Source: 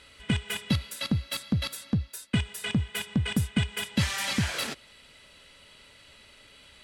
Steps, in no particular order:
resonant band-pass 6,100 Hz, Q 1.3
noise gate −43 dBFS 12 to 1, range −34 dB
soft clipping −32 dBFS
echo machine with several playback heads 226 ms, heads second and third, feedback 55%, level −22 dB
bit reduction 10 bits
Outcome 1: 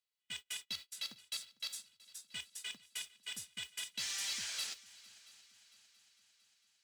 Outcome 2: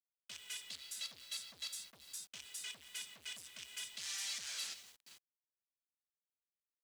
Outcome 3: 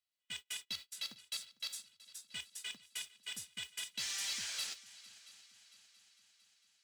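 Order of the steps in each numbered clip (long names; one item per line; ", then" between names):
resonant band-pass, then bit reduction, then noise gate, then soft clipping, then echo machine with several playback heads
echo machine with several playback heads, then noise gate, then soft clipping, then resonant band-pass, then bit reduction
resonant band-pass, then bit reduction, then noise gate, then echo machine with several playback heads, then soft clipping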